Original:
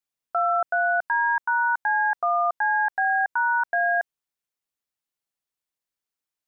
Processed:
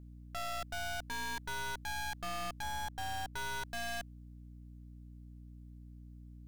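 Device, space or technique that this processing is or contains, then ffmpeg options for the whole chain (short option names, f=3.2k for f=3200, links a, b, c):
valve amplifier with mains hum: -filter_complex "[0:a]asettb=1/sr,asplit=3[a][b][c];[a]atrim=end=2.624[d];[b]atrim=start=2.62:end=3.34,asetpts=PTS-STARTPTS,afade=t=in:d=0.004:c=qsin,afade=t=out:st=0.716:d=0.004:c=qsin,tiltshelf=f=1.2k:g=4.5[e];[c]atrim=start=3.336[f];[d][e]acrossfade=d=0.004:c1=hsin:c2=qsin[g];[g][f]acrossfade=d=0.004:c1=qsin:c2=hsin,aeval=exprs='(tanh(178*val(0)+0.75)-tanh(0.75))/178':c=same,aeval=exprs='val(0)+0.00158*(sin(2*PI*60*n/s)+sin(2*PI*2*60*n/s)/2+sin(2*PI*3*60*n/s)/3+sin(2*PI*4*60*n/s)/4+sin(2*PI*5*60*n/s)/5)':c=same,volume=6dB"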